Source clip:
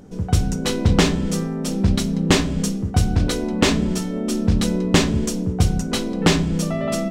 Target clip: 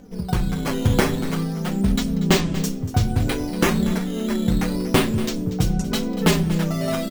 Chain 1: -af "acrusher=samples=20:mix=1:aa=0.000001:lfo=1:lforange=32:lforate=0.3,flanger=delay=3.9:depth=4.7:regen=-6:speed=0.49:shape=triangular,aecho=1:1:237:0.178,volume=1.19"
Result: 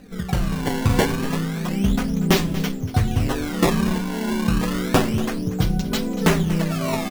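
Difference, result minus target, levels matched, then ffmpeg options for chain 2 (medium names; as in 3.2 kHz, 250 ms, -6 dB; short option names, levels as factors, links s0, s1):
decimation with a swept rate: distortion +5 dB
-af "acrusher=samples=7:mix=1:aa=0.000001:lfo=1:lforange=11.2:lforate=0.3,flanger=delay=3.9:depth=4.7:regen=-6:speed=0.49:shape=triangular,aecho=1:1:237:0.178,volume=1.19"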